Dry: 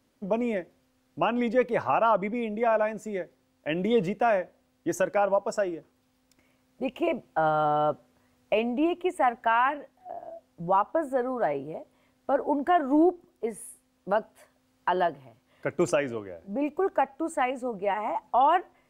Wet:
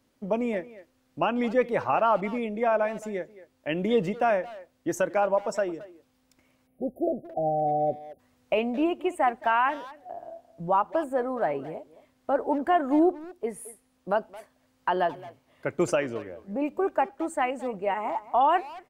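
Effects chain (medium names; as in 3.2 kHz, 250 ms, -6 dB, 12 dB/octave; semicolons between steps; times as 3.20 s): spectral selection erased 6.67–8.19 s, 780–9400 Hz; speakerphone echo 220 ms, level -16 dB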